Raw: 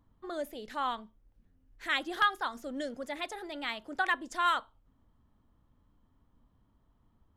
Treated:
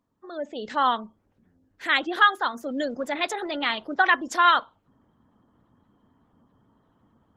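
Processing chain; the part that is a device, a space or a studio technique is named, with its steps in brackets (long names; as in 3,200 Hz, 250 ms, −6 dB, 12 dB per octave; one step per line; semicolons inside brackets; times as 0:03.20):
noise-suppressed video call (high-pass filter 140 Hz 12 dB per octave; gate on every frequency bin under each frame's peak −30 dB strong; automatic gain control gain up to 15 dB; level −3.5 dB; Opus 16 kbit/s 48,000 Hz)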